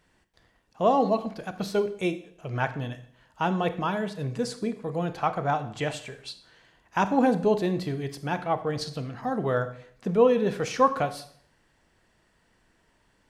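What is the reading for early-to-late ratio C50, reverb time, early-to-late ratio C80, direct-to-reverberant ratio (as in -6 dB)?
13.5 dB, 0.60 s, 16.0 dB, 10.5 dB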